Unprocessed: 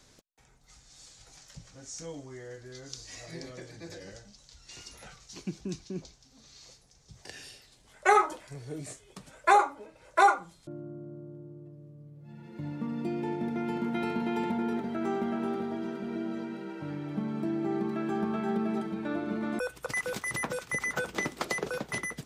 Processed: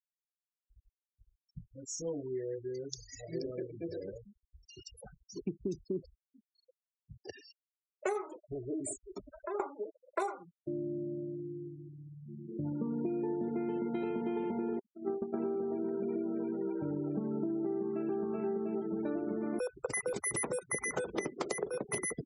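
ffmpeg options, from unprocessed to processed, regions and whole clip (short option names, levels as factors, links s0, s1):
-filter_complex "[0:a]asettb=1/sr,asplit=3[s0][s1][s2];[s0]atrim=end=8.524[s3];[s1]atrim=start=8.52:end=9.6,asetpts=PTS-STARTPTS,afade=t=in:d=0.004:c=qsin,afade=t=out:st=1.076:d=0.004:c=qsin,aecho=1:1:3.1:0.93,atrim=end_sample=47628,acompressor=threshold=0.0141:ratio=12:attack=3.2:release=140:knee=1:detection=peak[s4];[s2]atrim=start=9.596[s5];[s3][s4]acrossfade=d=0.004:c1=hsin:c2=qsin[s6];[s6][s5]acrossfade=d=0.004:c1=qsin:c2=hsin,asettb=1/sr,asplit=3[s7][s8][s9];[s7]atrim=end=14.794[s10];[s8]atrim=start=14.79:end=15.34,asetpts=PTS-STARTPTS,afade=t=in:d=0.004:c=qsin,afade=t=out:st=0.546:d=0.004:c=qsin,highshelf=f=7000:g=-9,agate=range=0.0316:threshold=0.0316:ratio=16:release=100:detection=peak[s11];[s9]atrim=start=15.336[s12];[s10][s11]acrossfade=d=0.004:c1=hsin:c2=qsin[s13];[s13][s12]acrossfade=d=0.004:c1=qsin:c2=hsin,afftfilt=real='re*gte(hypot(re,im),0.0126)':imag='im*gte(hypot(re,im),0.0126)':win_size=1024:overlap=0.75,equalizer=f=400:t=o:w=0.67:g=11,equalizer=f=1600:t=o:w=0.67:g=-6,equalizer=f=4000:t=o:w=0.67:g=-4,equalizer=f=10000:t=o:w=0.67:g=12,acompressor=threshold=0.0282:ratio=20"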